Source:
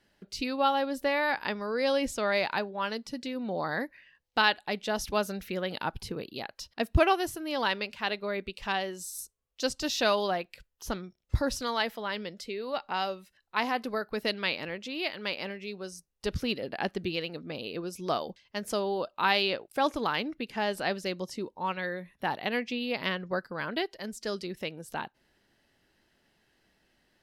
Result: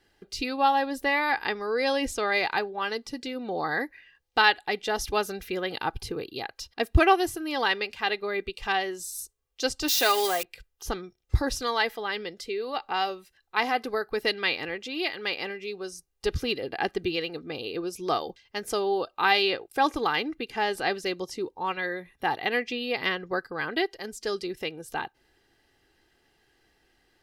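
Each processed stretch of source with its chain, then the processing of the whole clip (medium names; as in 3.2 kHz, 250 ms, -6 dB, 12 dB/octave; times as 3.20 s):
9.88–10.43 s: zero-crossing glitches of -24 dBFS + high-pass 330 Hz 6 dB/octave + comb 7.4 ms, depth 37%
whole clip: comb 2.5 ms, depth 54%; dynamic bell 1.9 kHz, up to +4 dB, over -47 dBFS, Q 6.5; trim +2 dB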